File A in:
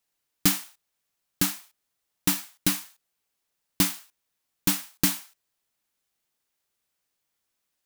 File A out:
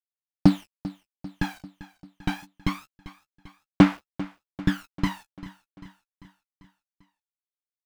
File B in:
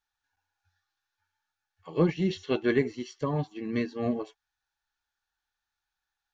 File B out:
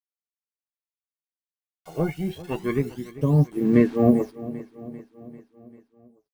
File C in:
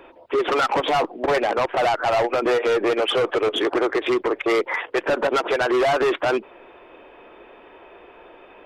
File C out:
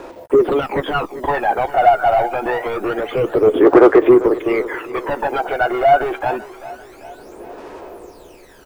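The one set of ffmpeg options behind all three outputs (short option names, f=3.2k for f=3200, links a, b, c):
-filter_complex "[0:a]lowpass=2.7k,highshelf=f=2k:g=-10,acrusher=bits=8:mix=0:aa=0.000001,aphaser=in_gain=1:out_gain=1:delay=1.4:decay=0.73:speed=0.26:type=sinusoidal,aeval=exprs='0.501*(abs(mod(val(0)/0.501+3,4)-2)-1)':c=same,asplit=2[a][b];[b]adelay=14,volume=-13dB[c];[a][c]amix=inputs=2:normalize=0,asplit=2[d][e];[e]aecho=0:1:394|788|1182|1576|1970:0.141|0.0805|0.0459|0.0262|0.0149[f];[d][f]amix=inputs=2:normalize=0,volume=2dB"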